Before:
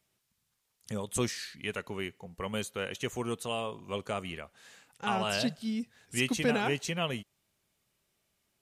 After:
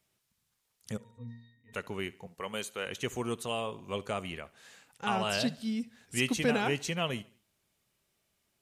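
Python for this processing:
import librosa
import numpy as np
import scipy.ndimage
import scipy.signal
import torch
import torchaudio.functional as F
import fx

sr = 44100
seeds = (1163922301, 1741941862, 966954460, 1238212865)

y = fx.octave_resonator(x, sr, note='A#', decay_s=0.63, at=(0.96, 1.72), fade=0.02)
y = fx.highpass(y, sr, hz=390.0, slope=6, at=(2.27, 2.87))
y = fx.echo_feedback(y, sr, ms=72, feedback_pct=44, wet_db=-22)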